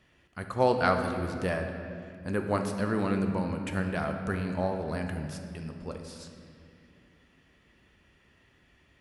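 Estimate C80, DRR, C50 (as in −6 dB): 7.0 dB, 4.0 dB, 5.5 dB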